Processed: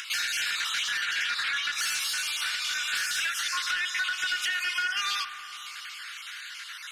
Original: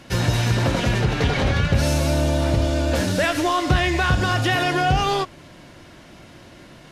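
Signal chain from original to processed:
time-frequency cells dropped at random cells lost 28%
elliptic high-pass filter 1,400 Hz, stop band 60 dB
upward compression, threshold −41 dBFS
in parallel at +3 dB: brickwall limiter −22 dBFS, peak gain reduction 9 dB
on the sum: downward compressor 6 to 1, threshold −25 dBFS, peak gain reduction 8.5 dB
soft clipping −20 dBFS, distortion −21 dB
on a send at −7 dB: Gaussian smoothing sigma 2.7 samples + convolution reverb RT60 3.4 s, pre-delay 56 ms

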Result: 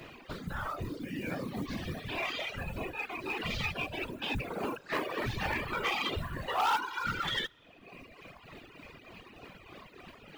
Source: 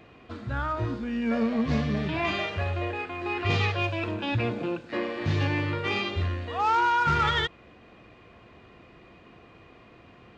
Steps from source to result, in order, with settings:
shaped tremolo triangle 3.3 Hz, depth 35%
dense smooth reverb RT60 0.92 s, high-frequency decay 0.95×, DRR 18.5 dB
downward compressor 2 to 1, threshold −44 dBFS, peak gain reduction 12.5 dB
0:04.50–0:06.77: parametric band 990 Hz +9.5 dB 2 octaves
noise that follows the level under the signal 31 dB
random phases in short frames
reverb reduction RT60 1.5 s
soft clipping −29 dBFS, distortion −13 dB
high-shelf EQ 2,400 Hz +8.5 dB
level +4 dB

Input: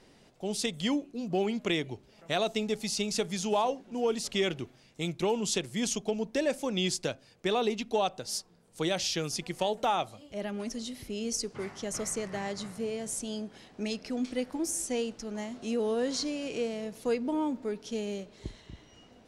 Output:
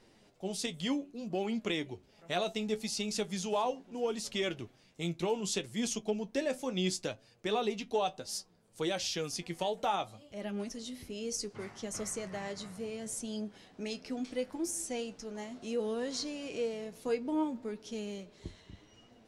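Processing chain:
flanger 0.68 Hz, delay 8.4 ms, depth 3.7 ms, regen +50%

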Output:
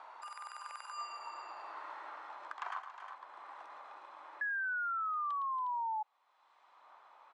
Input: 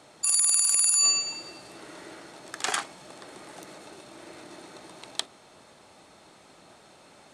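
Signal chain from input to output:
source passing by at 0:01.50, 19 m/s, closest 13 metres
four-pole ladder band-pass 1,100 Hz, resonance 65%
on a send: multi-tap delay 111/279/359 ms −10.5/−15.5/−15 dB
on the sum: sound drawn into the spectrogram fall, 0:04.41–0:06.03, 850–1,700 Hz −37 dBFS
multiband upward and downward compressor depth 70%
level +1.5 dB

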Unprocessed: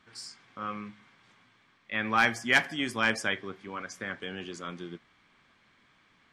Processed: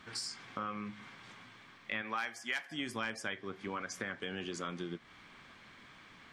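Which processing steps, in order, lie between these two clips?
0:02.01–0:02.70: high-pass filter 410 Hz → 1,200 Hz 6 dB per octave
downward compressor 5 to 1, threshold −45 dBFS, peak gain reduction 23 dB
level +8 dB

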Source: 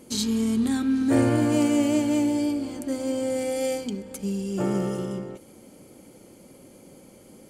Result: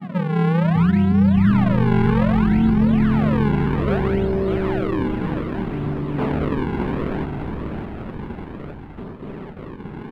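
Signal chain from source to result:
compressor on every frequency bin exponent 0.6
noise gate with hold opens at −26 dBFS
high-pass filter 160 Hz 24 dB per octave
low-shelf EQ 220 Hz −10 dB
downward compressor 3 to 1, threshold −25 dBFS, peak gain reduction 6 dB
low-pass filter sweep 260 Hz → 1,500 Hz, 0:01.80–0:03.90
sample-and-hold swept by an LFO 30×, swing 160% 0.85 Hz
high-frequency loss of the air 310 metres
echo with shifted repeats 443 ms, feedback 53%, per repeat −100 Hz, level −6 dB
wrong playback speed 45 rpm record played at 33 rpm
level +5.5 dB

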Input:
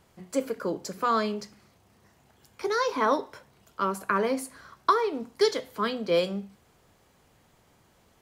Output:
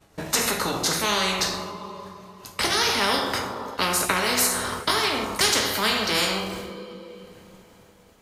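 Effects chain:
pitch glide at a constant tempo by −2.5 semitones ending unshifted
downward expander −51 dBFS
coupled-rooms reverb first 0.48 s, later 2.8 s, from −26 dB, DRR 3 dB
every bin compressed towards the loudest bin 4 to 1
level +4 dB

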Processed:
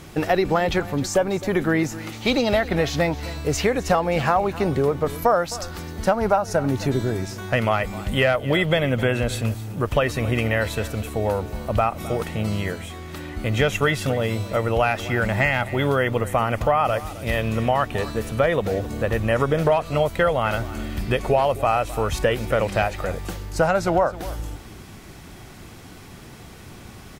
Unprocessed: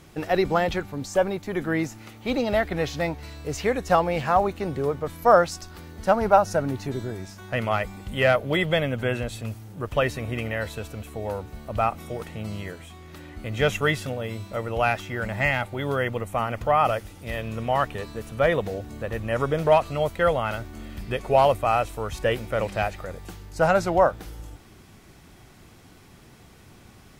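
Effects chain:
0:02.12–0:02.66: parametric band 5,000 Hz +11 dB → +2 dB 2 octaves
downward compressor 5 to 1, threshold −25 dBFS, peak gain reduction 13 dB
single-tap delay 262 ms −17 dB
level +8.5 dB

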